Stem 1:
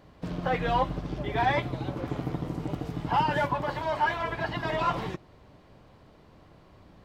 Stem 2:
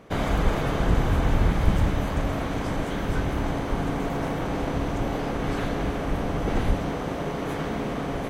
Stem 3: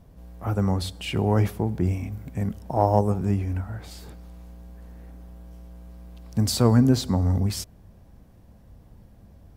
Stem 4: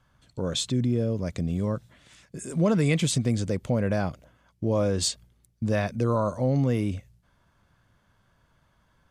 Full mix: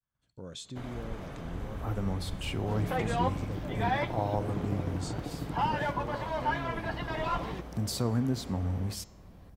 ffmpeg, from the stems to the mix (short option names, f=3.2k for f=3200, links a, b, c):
-filter_complex "[0:a]adelay=2450,volume=-4.5dB[a];[1:a]adelay=650,volume=-17.5dB[b];[2:a]adelay=1400,volume=-2.5dB[c];[3:a]agate=range=-33dB:threshold=-55dB:ratio=3:detection=peak,volume=-13.5dB[d];[c][d]amix=inputs=2:normalize=0,acompressor=threshold=-41dB:ratio=1.5,volume=0dB[e];[a][b][e]amix=inputs=3:normalize=0,bandreject=f=205.9:t=h:w=4,bandreject=f=411.8:t=h:w=4,bandreject=f=617.7:t=h:w=4,bandreject=f=823.6:t=h:w=4,bandreject=f=1.0295k:t=h:w=4,bandreject=f=1.2354k:t=h:w=4,bandreject=f=1.4413k:t=h:w=4,bandreject=f=1.6472k:t=h:w=4,bandreject=f=1.8531k:t=h:w=4,bandreject=f=2.059k:t=h:w=4,bandreject=f=2.2649k:t=h:w=4,bandreject=f=2.4708k:t=h:w=4,bandreject=f=2.6767k:t=h:w=4,bandreject=f=2.8826k:t=h:w=4,bandreject=f=3.0885k:t=h:w=4,bandreject=f=3.2944k:t=h:w=4,bandreject=f=3.5003k:t=h:w=4,bandreject=f=3.7062k:t=h:w=4,bandreject=f=3.9121k:t=h:w=4,bandreject=f=4.118k:t=h:w=4,bandreject=f=4.3239k:t=h:w=4,bandreject=f=4.5298k:t=h:w=4,bandreject=f=4.7357k:t=h:w=4,bandreject=f=4.9416k:t=h:w=4,bandreject=f=5.1475k:t=h:w=4,bandreject=f=5.3534k:t=h:w=4,bandreject=f=5.5593k:t=h:w=4,bandreject=f=5.7652k:t=h:w=4,bandreject=f=5.9711k:t=h:w=4,bandreject=f=6.177k:t=h:w=4,bandreject=f=6.3829k:t=h:w=4,bandreject=f=6.5888k:t=h:w=4,bandreject=f=6.7947k:t=h:w=4,bandreject=f=7.0006k:t=h:w=4,bandreject=f=7.2065k:t=h:w=4,bandreject=f=7.4124k:t=h:w=4,bandreject=f=7.6183k:t=h:w=4"